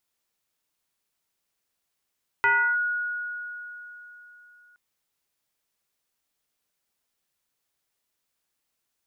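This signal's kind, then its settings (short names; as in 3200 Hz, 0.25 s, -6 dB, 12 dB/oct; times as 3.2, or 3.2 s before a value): FM tone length 2.32 s, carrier 1450 Hz, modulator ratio 0.36, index 1.2, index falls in 0.33 s linear, decay 3.65 s, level -16.5 dB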